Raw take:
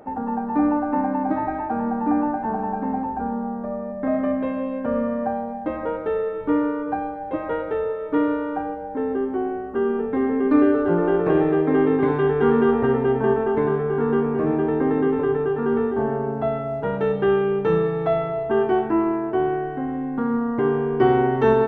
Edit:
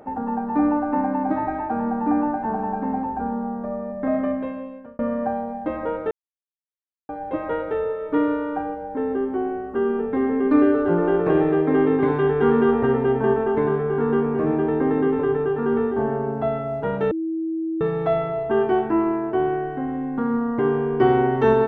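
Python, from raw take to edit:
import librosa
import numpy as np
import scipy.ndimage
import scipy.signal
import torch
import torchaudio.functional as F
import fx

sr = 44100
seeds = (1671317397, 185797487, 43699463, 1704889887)

y = fx.edit(x, sr, fx.fade_out_span(start_s=4.18, length_s=0.81),
    fx.silence(start_s=6.11, length_s=0.98),
    fx.bleep(start_s=17.11, length_s=0.7, hz=324.0, db=-22.5), tone=tone)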